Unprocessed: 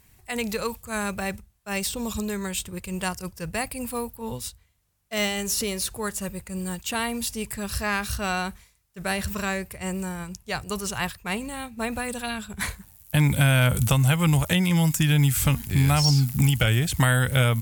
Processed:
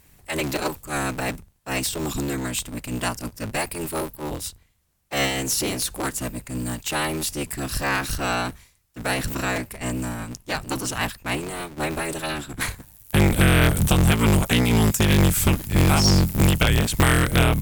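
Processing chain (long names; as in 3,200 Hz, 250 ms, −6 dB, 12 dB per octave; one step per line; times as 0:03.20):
sub-harmonics by changed cycles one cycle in 3, inverted
level +2.5 dB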